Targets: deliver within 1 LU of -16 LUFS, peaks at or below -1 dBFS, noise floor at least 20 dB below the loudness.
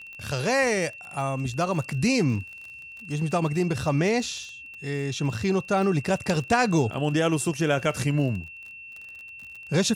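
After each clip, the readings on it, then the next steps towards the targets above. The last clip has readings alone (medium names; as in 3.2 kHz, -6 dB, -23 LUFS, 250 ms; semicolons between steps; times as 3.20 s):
tick rate 34 per s; steady tone 2.7 kHz; tone level -40 dBFS; loudness -25.5 LUFS; peak level -9.5 dBFS; loudness target -16.0 LUFS
-> de-click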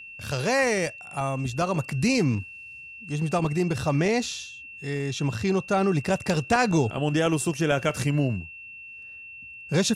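tick rate 0.10 per s; steady tone 2.7 kHz; tone level -40 dBFS
-> band-stop 2.7 kHz, Q 30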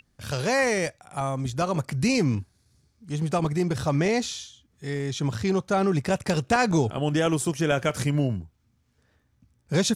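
steady tone not found; loudness -25.5 LUFS; peak level -9.5 dBFS; loudness target -16.0 LUFS
-> trim +9.5 dB; peak limiter -1 dBFS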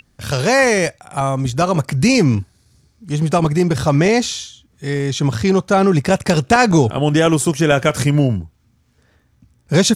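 loudness -16.0 LUFS; peak level -1.0 dBFS; noise floor -59 dBFS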